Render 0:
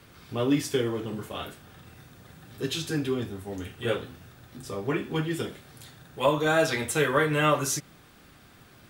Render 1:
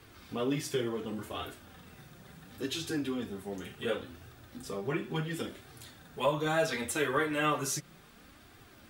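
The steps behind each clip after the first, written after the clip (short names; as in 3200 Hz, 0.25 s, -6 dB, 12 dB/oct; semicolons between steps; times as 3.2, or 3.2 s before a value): flange 0.7 Hz, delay 2.4 ms, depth 3.4 ms, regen -27%; in parallel at -1 dB: compressor, threshold -37 dBFS, peak gain reduction 16 dB; on the sum: gain -4 dB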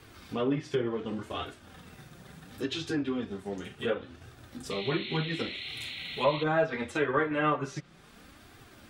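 treble ducked by the level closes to 2000 Hz, closed at -27.5 dBFS; transient shaper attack 0 dB, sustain -4 dB; painted sound noise, 4.7–6.44, 1900–4300 Hz -43 dBFS; gain +3 dB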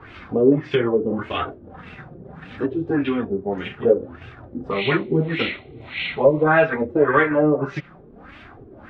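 LFO low-pass sine 1.7 Hz 390–2700 Hz; gain +9 dB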